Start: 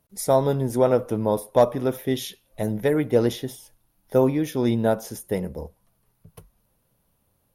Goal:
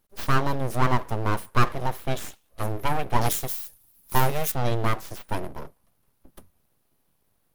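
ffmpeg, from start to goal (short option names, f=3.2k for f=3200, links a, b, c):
-filter_complex "[0:a]aeval=exprs='abs(val(0))':c=same,asettb=1/sr,asplit=3[a][b][c];[a]atrim=end=3.214[d];[b]atrim=start=3.21:end=4.52,asetpts=PTS-STARTPTS,afade=t=in:d=0.004:c=qsin,afade=t=out:st=1.306:d=0.004:c=qsin,aemphasis=mode=production:type=75kf[e];[c]atrim=start=4.516[f];[d][e]acrossfade=d=0.004:c1=hsin:c2=qsin[g];[g][f]acrossfade=d=0.004:c1=qsin:c2=hsin"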